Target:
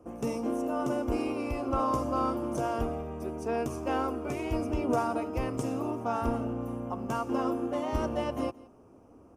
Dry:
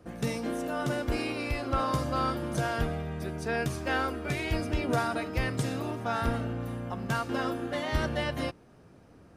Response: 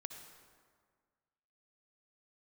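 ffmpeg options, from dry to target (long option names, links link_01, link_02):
-filter_complex "[0:a]firequalizer=gain_entry='entry(100,0);entry(160,-8);entry(240,6);entry(620,4);entry(1100,6);entry(1700,-11);entry(2700,-1);entry(3900,-13);entry(5700,4)':delay=0.05:min_phase=1,asplit=2[link_01][link_02];[link_02]adynamicsmooth=sensitivity=8:basefreq=4300,volume=-2.5dB[link_03];[link_01][link_03]amix=inputs=2:normalize=0,aecho=1:1:172:0.0794,volume=-8dB"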